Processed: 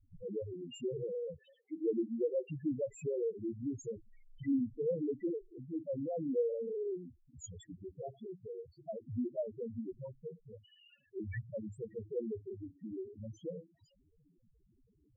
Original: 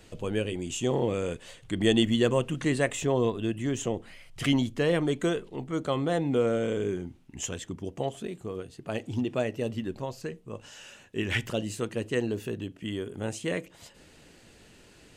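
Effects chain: 1.38–2.51 s: high-pass 270 Hz 24 dB/octave; 8.13–9.01 s: dynamic bell 700 Hz, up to +4 dB, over -49 dBFS, Q 2.4; loudest bins only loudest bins 2; trim -5 dB

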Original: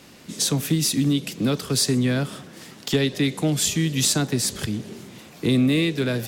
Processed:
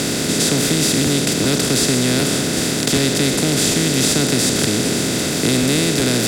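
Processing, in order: spectral levelling over time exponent 0.2; crackling interface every 0.38 s, samples 512, repeat, from 0.67 s; trim -2.5 dB

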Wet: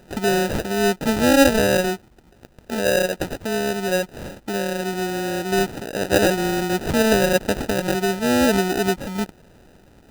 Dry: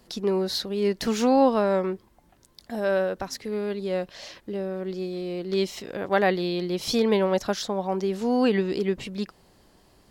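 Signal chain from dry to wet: in parallel at -3 dB: compression, threshold -32 dBFS, peak gain reduction 16.5 dB; on the sum: sample-rate reducer 1.1 kHz, jitter 0%; trim +3 dB

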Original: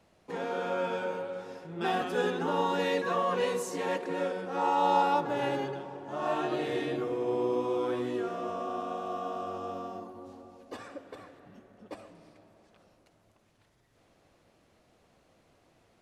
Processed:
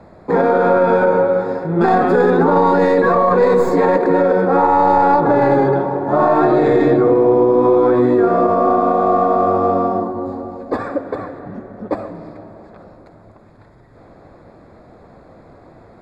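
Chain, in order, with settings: tracing distortion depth 0.077 ms; boxcar filter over 15 samples; loudness maximiser +27 dB; trim -4 dB

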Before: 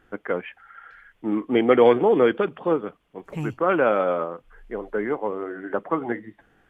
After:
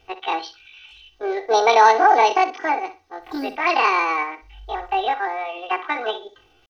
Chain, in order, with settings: pitch shift +10.5 st; comb 2.6 ms, depth 95%; flutter echo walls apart 10.5 m, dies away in 0.28 s

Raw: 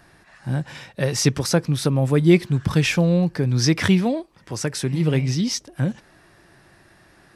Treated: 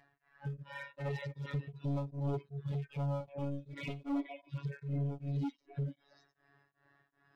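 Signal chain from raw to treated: harmonic-percussive separation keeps harmonic; distance through air 190 m; robot voice 141 Hz; compression 3:1, threshold -31 dBFS, peak gain reduction 12 dB; tone controls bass -7 dB, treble -10 dB; repeats whose band climbs or falls 241 ms, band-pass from 860 Hz, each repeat 1.4 oct, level -3 dB; hard clipper -37.5 dBFS, distortion -9 dB; spectral noise reduction 14 dB; 3.20–4.54 s: comb 3.5 ms, depth 53%; tremolo of two beating tones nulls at 2.6 Hz; trim +6.5 dB

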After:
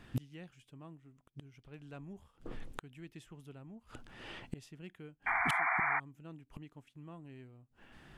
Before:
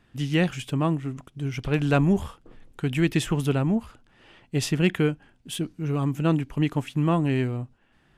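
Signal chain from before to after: inverted gate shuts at -29 dBFS, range -33 dB; painted sound noise, 5.26–6.00 s, 660–2400 Hz -37 dBFS; trim +5 dB

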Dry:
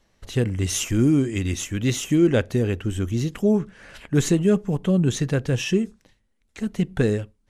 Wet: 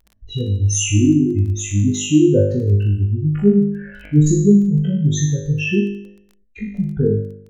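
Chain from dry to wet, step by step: spectral contrast enhancement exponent 2.9; flutter echo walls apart 3.4 m, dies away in 0.69 s; crackle 12 per s -35 dBFS; trim +2 dB

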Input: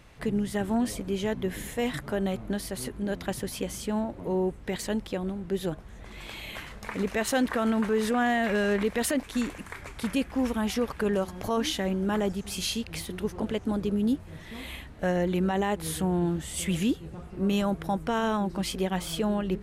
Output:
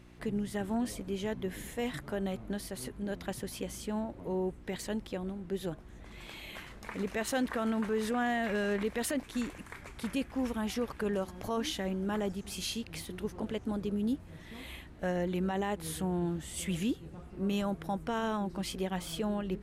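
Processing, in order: mains buzz 60 Hz, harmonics 6, -52 dBFS -1 dB/octave; trim -6 dB

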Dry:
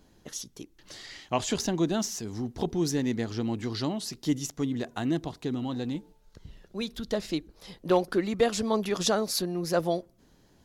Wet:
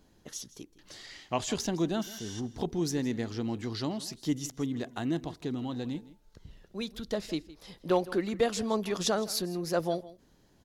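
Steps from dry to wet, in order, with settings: spectral replace 2.05–2.38 s, 1.4–11 kHz before; delay 162 ms -18.5 dB; trim -3 dB

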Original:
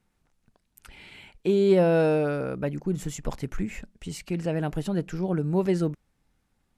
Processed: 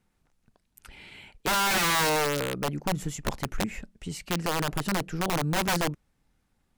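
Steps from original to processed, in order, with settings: integer overflow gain 20 dB

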